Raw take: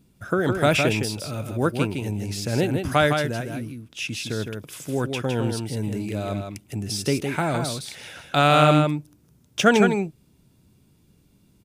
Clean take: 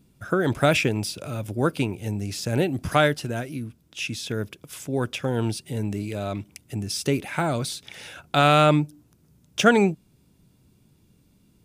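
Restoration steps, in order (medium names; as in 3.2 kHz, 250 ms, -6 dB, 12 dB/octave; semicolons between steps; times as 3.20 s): inverse comb 160 ms -5.5 dB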